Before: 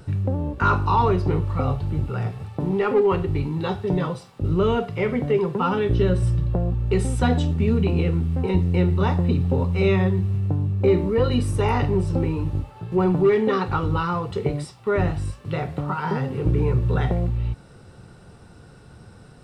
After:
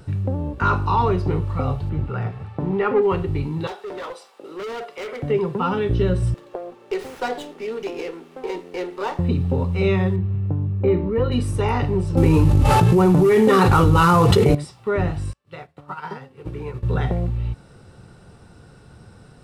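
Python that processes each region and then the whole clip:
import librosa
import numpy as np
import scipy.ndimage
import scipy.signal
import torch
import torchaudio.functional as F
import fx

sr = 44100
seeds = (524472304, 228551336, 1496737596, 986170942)

y = fx.chain(x, sr, fx.lowpass(hz=2400.0, slope=6),
    fx.peak_eq(hz=1600.0, db=4.5, octaves=1.9), at=(1.89, 3.03))
y = fx.chain(y, sr, fx.highpass(hz=400.0, slope=24),
    fx.clip_hard(threshold_db=-28.5), at=(3.67, 5.23))
y = fx.chain(y, sr, fx.highpass(hz=360.0, slope=24),
    fx.running_max(window=5), at=(6.34, 9.19))
y = fx.chain(y, sr, fx.air_absorb(metres=280.0),
    fx.notch(hz=720.0, q=20.0),
    fx.resample_linear(factor=2), at=(10.16, 11.32))
y = fx.chain(y, sr, fx.cvsd(bps=64000),
    fx.env_flatten(amount_pct=100), at=(12.17, 14.55))
y = fx.chain(y, sr, fx.low_shelf(hz=390.0, db=-10.5),
    fx.upward_expand(threshold_db=-43.0, expansion=2.5), at=(15.33, 16.83))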